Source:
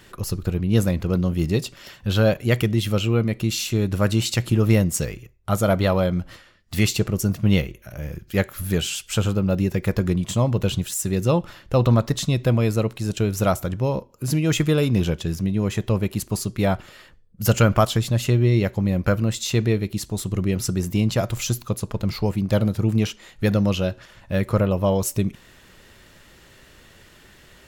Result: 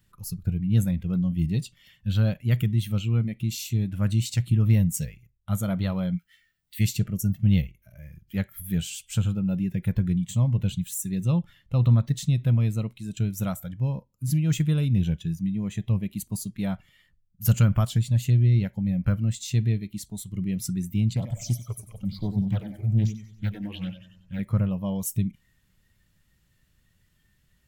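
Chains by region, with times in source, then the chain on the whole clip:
0:06.15–0:06.79: Chebyshev high-pass filter 1,300 Hz, order 10 + double-tracking delay 17 ms −7 dB + background noise pink −66 dBFS
0:21.13–0:24.39: all-pass phaser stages 8, 1.1 Hz, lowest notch 140–4,100 Hz + repeating echo 93 ms, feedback 59%, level −8 dB + highs frequency-modulated by the lows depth 0.71 ms
whole clip: noise reduction from a noise print of the clip's start 12 dB; drawn EQ curve 170 Hz 0 dB, 390 Hz −17 dB, 6,100 Hz −8 dB, 14,000 Hz −1 dB

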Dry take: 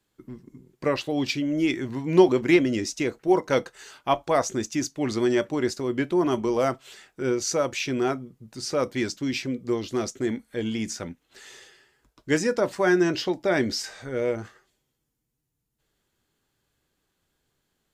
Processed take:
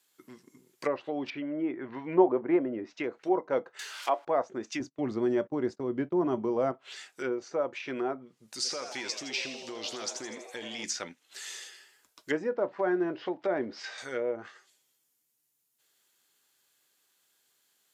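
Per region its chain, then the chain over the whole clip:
0:01.30–0:03.04: low-pass filter 2,000 Hz + dynamic equaliser 770 Hz, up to +4 dB, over −29 dBFS, Q 0.95
0:03.79–0:04.25: spike at every zero crossing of −25.5 dBFS + high-pass filter 310 Hz 24 dB per octave
0:04.80–0:06.72: noise gate −38 dBFS, range −19 dB + bass and treble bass +11 dB, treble +9 dB
0:08.55–0:10.84: downward compressor 12 to 1, threshold −30 dBFS + echo with shifted repeats 82 ms, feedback 57%, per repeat +130 Hz, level −8.5 dB
0:12.49–0:13.98: one scale factor per block 5 bits + high-frequency loss of the air 110 metres
whole clip: high-pass filter 330 Hz 6 dB per octave; treble cut that deepens with the level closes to 790 Hz, closed at −24 dBFS; spectral tilt +3 dB per octave

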